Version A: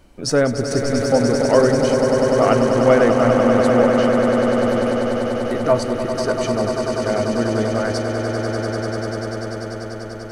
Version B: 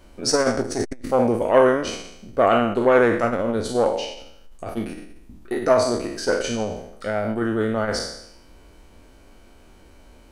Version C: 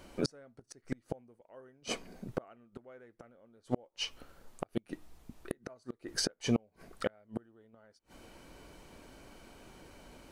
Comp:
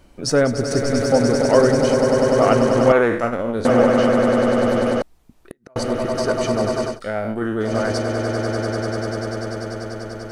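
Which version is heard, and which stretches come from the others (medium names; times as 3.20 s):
A
2.92–3.65 s: from B
5.02–5.76 s: from C
6.92–7.67 s: from B, crossfade 0.16 s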